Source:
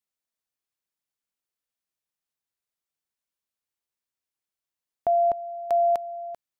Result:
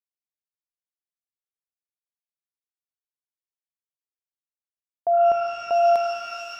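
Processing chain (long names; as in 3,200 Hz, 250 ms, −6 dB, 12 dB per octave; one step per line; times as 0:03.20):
notch filter 780 Hz, Q 22
noise gate with hold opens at −25 dBFS
reverb with rising layers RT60 2.9 s, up +12 semitones, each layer −2 dB, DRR 5.5 dB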